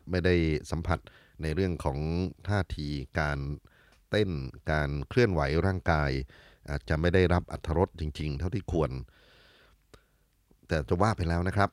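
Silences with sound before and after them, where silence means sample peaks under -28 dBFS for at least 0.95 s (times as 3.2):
8.98–10.72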